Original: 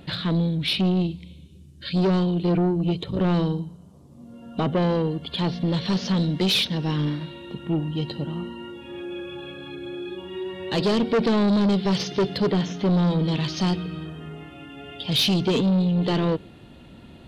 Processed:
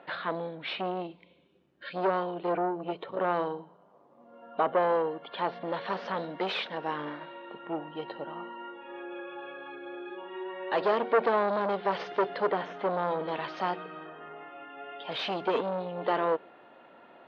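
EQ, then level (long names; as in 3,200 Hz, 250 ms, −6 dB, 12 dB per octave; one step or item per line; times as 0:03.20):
flat-topped band-pass 980 Hz, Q 0.79
+3.0 dB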